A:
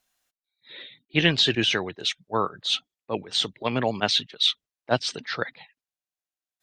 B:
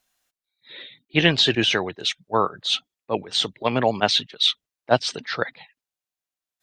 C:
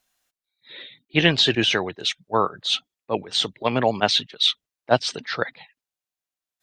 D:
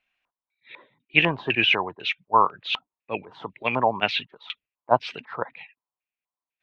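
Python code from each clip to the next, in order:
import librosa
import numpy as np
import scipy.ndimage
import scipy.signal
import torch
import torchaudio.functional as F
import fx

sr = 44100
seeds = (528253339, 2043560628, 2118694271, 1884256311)

y1 = fx.dynamic_eq(x, sr, hz=720.0, q=1.0, threshold_db=-36.0, ratio=4.0, max_db=4)
y1 = y1 * 10.0 ** (2.0 / 20.0)
y2 = y1
y3 = fx.filter_lfo_lowpass(y2, sr, shape='square', hz=2.0, low_hz=1000.0, high_hz=2500.0, q=6.1)
y3 = y3 * 10.0 ** (-6.5 / 20.0)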